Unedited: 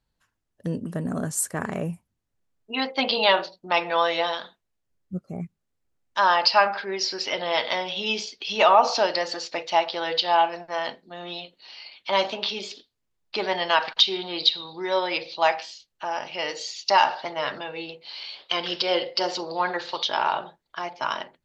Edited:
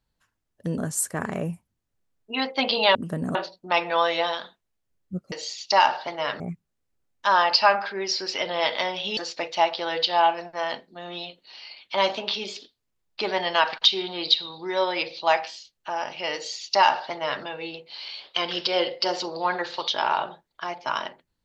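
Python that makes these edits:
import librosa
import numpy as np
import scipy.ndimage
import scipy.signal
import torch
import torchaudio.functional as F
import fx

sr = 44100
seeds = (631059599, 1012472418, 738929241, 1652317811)

y = fx.edit(x, sr, fx.move(start_s=0.78, length_s=0.4, to_s=3.35),
    fx.cut(start_s=8.09, length_s=1.23),
    fx.duplicate(start_s=16.5, length_s=1.08, to_s=5.32), tone=tone)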